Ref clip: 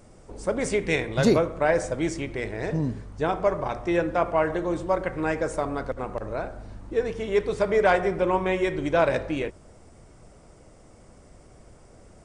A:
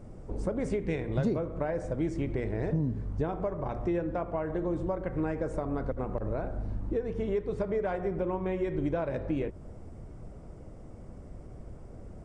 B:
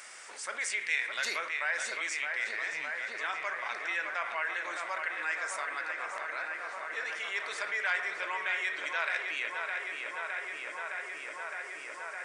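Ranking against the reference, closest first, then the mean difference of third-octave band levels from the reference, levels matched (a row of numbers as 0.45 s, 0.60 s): A, B; 5.5 dB, 15.0 dB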